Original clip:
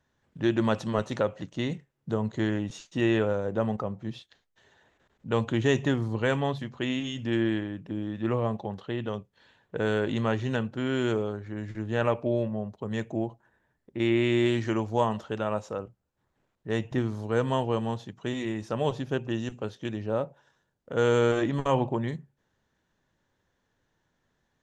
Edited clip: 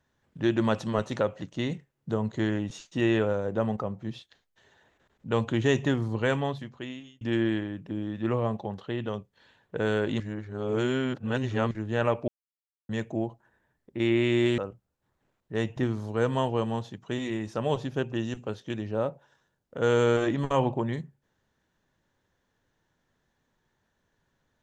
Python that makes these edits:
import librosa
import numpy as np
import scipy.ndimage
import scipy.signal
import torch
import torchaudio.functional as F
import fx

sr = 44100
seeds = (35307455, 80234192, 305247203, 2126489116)

y = fx.edit(x, sr, fx.fade_out_span(start_s=6.32, length_s=0.89),
    fx.reverse_span(start_s=10.2, length_s=1.51),
    fx.silence(start_s=12.28, length_s=0.61),
    fx.cut(start_s=14.58, length_s=1.15), tone=tone)